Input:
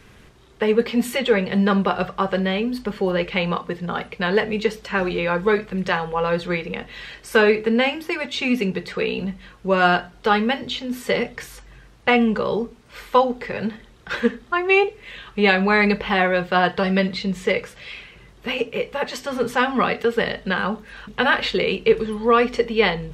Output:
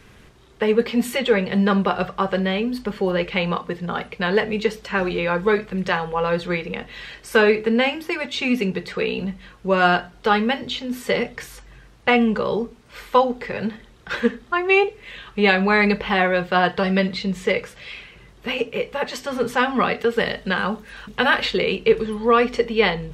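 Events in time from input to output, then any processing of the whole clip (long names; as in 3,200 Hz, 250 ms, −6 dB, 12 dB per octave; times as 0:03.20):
0:20.16–0:21.46: high-shelf EQ 5,700 Hz +6 dB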